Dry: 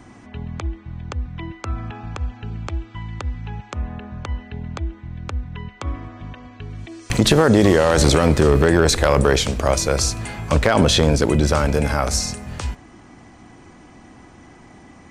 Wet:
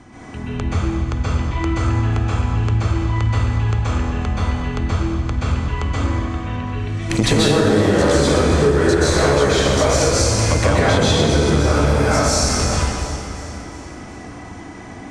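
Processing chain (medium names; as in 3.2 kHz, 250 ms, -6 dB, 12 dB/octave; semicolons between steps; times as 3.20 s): on a send: echo whose repeats swap between lows and highs 182 ms, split 1.1 kHz, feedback 73%, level -12 dB; on the sum: plate-style reverb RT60 1.6 s, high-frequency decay 0.9×, pre-delay 115 ms, DRR -9.5 dB; compression 6:1, threshold -12 dBFS, peak gain reduction 12.5 dB; low-pass 10 kHz 12 dB/octave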